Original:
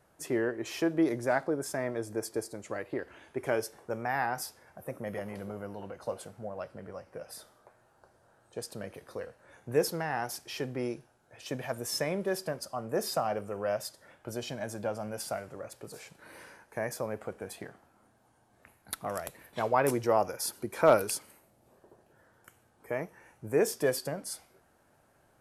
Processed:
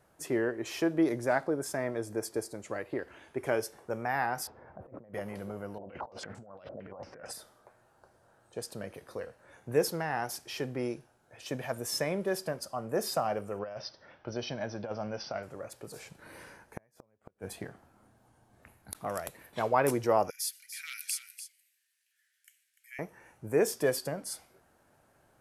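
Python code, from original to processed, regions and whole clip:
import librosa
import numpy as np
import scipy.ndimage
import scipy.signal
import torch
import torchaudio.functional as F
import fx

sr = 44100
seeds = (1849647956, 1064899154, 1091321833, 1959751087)

y = fx.chain(x, sr, fx.lowpass(hz=1100.0, slope=12),
    fx.over_compress(threshold_db=-50.0, ratio=-1.0), at=(4.47, 5.14))
y = fx.chain(y, sr, fx.peak_eq(hz=260.0, db=4.0, octaves=0.86),
    fx.over_compress(threshold_db=-49.0, ratio=-1.0),
    fx.filter_held_lowpass(hz=8.8, low_hz=630.0, high_hz=7600.0), at=(5.78, 7.33))
y = fx.chain(y, sr, fx.cheby1_lowpass(hz=6000.0, order=10),
    fx.over_compress(threshold_db=-34.0, ratio=-0.5), at=(13.59, 15.43))
y = fx.chain(y, sr, fx.low_shelf(hz=200.0, db=7.5),
    fx.gate_flip(shuts_db=-24.0, range_db=-37), at=(15.96, 18.95))
y = fx.chain(y, sr, fx.steep_highpass(hz=1900.0, slope=48),
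    fx.echo_single(ms=294, db=-11.0), at=(20.3, 22.99))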